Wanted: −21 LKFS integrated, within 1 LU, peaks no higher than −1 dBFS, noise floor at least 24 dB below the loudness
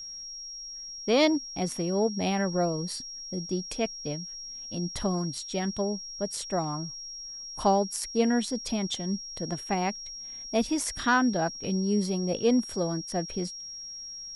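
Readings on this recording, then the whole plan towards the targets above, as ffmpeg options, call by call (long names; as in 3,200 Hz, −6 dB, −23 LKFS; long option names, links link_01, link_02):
interfering tone 5,600 Hz; level of the tone −38 dBFS; integrated loudness −29.5 LKFS; sample peak −11.5 dBFS; target loudness −21.0 LKFS
→ -af "bandreject=frequency=5600:width=30"
-af "volume=8.5dB"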